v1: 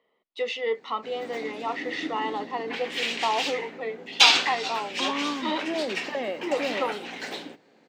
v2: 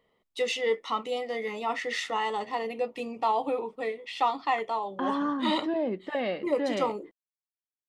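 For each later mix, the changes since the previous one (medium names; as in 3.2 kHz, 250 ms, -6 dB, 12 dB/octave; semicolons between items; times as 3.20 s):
background: muted; master: remove three-band isolator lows -20 dB, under 220 Hz, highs -20 dB, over 4.9 kHz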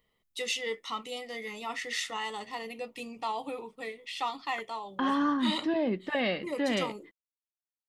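first voice: add treble shelf 8.3 kHz +10.5 dB; second voice +8.0 dB; master: add peaking EQ 560 Hz -9.5 dB 2.7 oct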